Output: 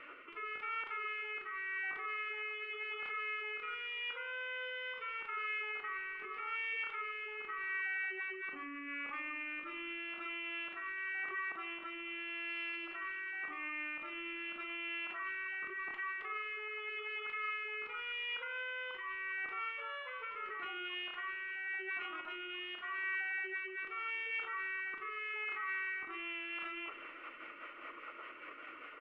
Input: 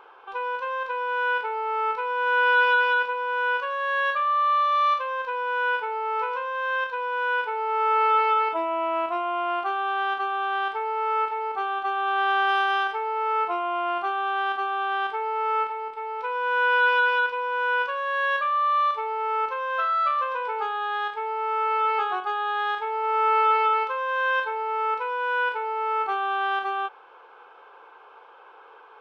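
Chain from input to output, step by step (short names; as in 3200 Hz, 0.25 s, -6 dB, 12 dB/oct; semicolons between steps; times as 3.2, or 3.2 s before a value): spectral gate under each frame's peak -10 dB weak; reverse; compressor 12:1, threshold -47 dBFS, peak gain reduction 19.5 dB; reverse; rotary speaker horn 0.85 Hz, later 5 Hz, at 25.89; Schroeder reverb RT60 2.2 s, combs from 27 ms, DRR 14.5 dB; pitch shift -2.5 st; tilt shelf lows +4.5 dB; feedback echo 0.479 s, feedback 60%, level -23 dB; limiter -47 dBFS, peak gain reduction 11 dB; band shelf 1900 Hz +13 dB; gain +3.5 dB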